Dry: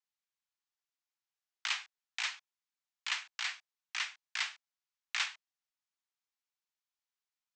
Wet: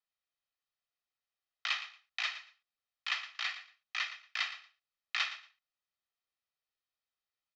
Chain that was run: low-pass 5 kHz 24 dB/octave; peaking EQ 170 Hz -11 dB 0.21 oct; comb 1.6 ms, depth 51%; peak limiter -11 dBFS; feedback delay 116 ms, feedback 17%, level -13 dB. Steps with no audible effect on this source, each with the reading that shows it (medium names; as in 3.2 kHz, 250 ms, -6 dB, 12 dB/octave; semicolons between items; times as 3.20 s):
peaking EQ 170 Hz: input has nothing below 570 Hz; peak limiter -11 dBFS: peak at its input -18.0 dBFS